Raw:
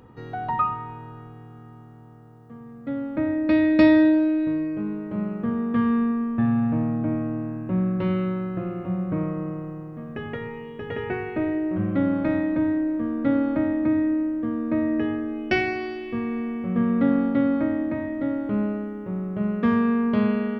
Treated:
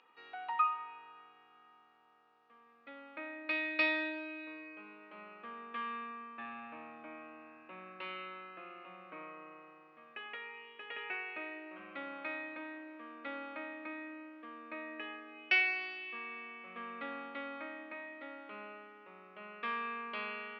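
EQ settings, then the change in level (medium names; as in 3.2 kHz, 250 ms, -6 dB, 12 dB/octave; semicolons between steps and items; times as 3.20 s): distance through air 72 m; cabinet simulation 320–4300 Hz, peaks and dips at 830 Hz +3 dB, 1.2 kHz +5 dB, 2.5 kHz +10 dB; differentiator; +3.5 dB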